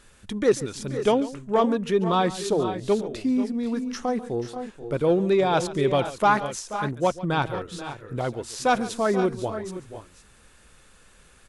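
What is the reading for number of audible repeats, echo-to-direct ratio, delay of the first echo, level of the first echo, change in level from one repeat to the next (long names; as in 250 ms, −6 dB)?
2, −9.0 dB, 141 ms, −17.0 dB, repeats not evenly spaced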